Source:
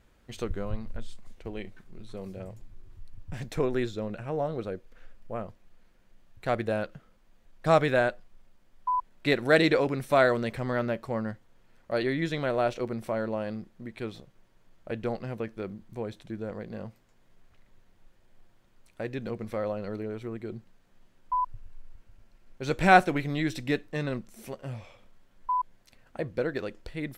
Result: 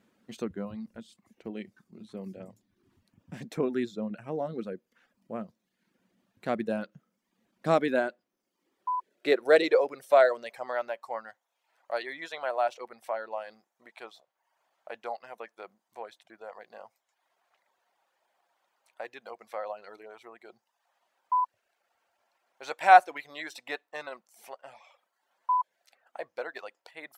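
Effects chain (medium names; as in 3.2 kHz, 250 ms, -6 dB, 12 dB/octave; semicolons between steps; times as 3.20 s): high-pass sweep 210 Hz -> 770 Hz, 7.54–10.97 s; reverb removal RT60 0.69 s; trim -3.5 dB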